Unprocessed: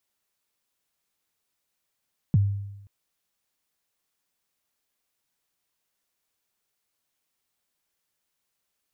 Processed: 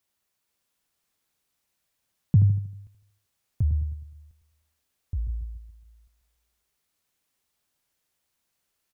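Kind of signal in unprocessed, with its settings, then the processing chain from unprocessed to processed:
kick drum length 0.53 s, from 190 Hz, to 100 Hz, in 26 ms, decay 0.95 s, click off, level -14 dB
bell 68 Hz +5 dB 2.6 oct; feedback echo 78 ms, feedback 45%, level -9 dB; echoes that change speed 0.481 s, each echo -5 st, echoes 2, each echo -6 dB

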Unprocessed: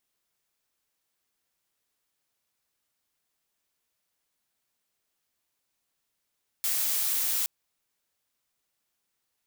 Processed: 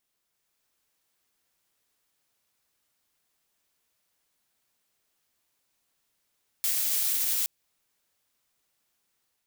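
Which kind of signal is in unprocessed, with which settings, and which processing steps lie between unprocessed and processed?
noise blue, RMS -27.5 dBFS 0.82 s
AGC gain up to 4 dB; dynamic EQ 1100 Hz, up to -6 dB, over -56 dBFS, Q 1.2; limiter -17 dBFS

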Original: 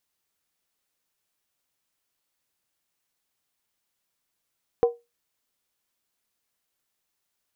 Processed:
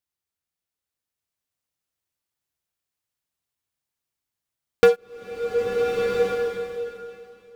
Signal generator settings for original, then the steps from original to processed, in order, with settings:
skin hit, lowest mode 473 Hz, decay 0.22 s, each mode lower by 11 dB, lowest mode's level -12 dB
bell 85 Hz +9 dB 1.5 oct; sample leveller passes 5; bloom reverb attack 1.37 s, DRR -0.5 dB

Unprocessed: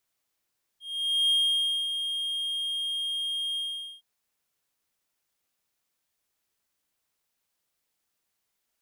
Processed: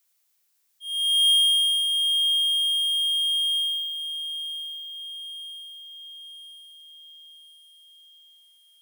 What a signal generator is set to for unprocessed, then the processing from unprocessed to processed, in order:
ADSR triangle 3230 Hz, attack 0.496 s, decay 0.578 s, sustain -8 dB, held 2.77 s, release 0.444 s -18 dBFS
tilt +3 dB/oct; on a send: diffused feedback echo 1.053 s, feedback 55%, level -10 dB

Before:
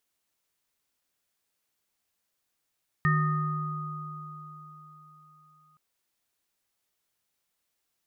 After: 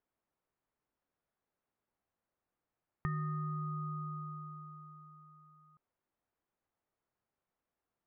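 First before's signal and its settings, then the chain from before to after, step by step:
sine partials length 2.72 s, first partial 153 Hz, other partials 373/1240/1830 Hz, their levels -20/-4.5/-4 dB, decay 3.57 s, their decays 2.89/4.69/0.84 s, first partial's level -21.5 dB
LPF 1200 Hz 12 dB/oct; compressor 4:1, threshold -36 dBFS

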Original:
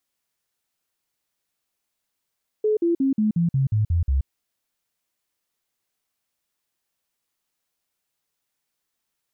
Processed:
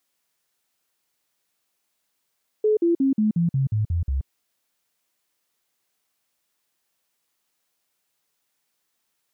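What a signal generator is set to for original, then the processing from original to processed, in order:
stepped sine 428 Hz down, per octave 3, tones 9, 0.13 s, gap 0.05 s -17 dBFS
low shelf 100 Hz -10 dB; in parallel at -2.5 dB: limiter -27.5 dBFS

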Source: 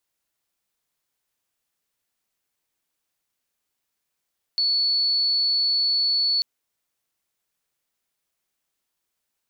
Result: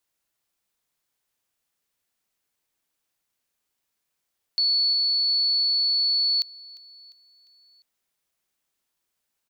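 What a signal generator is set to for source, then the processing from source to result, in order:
tone sine 4430 Hz -18.5 dBFS 1.84 s
feedback echo 0.35 s, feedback 50%, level -18.5 dB

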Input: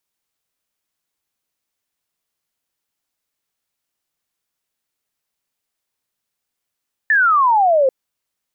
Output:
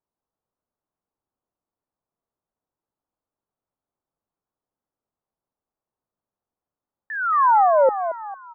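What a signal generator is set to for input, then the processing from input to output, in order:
laser zap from 1800 Hz, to 510 Hz, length 0.79 s sine, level -10.5 dB
LPF 1100 Hz 24 dB/oct; dynamic EQ 670 Hz, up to -4 dB, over -27 dBFS, Q 4.7; frequency-shifting echo 0.225 s, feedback 38%, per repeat +130 Hz, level -9.5 dB

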